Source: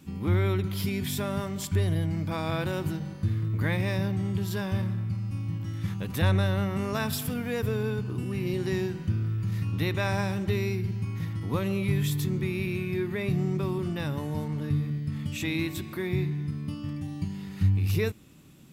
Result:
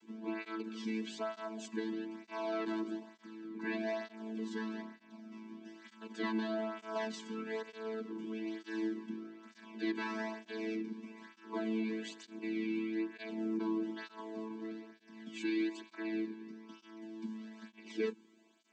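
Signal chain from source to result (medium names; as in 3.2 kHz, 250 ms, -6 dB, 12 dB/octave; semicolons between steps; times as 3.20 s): vocoder on a held chord bare fifth, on A3; high-pass 830 Hz 6 dB/octave; cancelling through-zero flanger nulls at 1.1 Hz, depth 1.7 ms; trim +3 dB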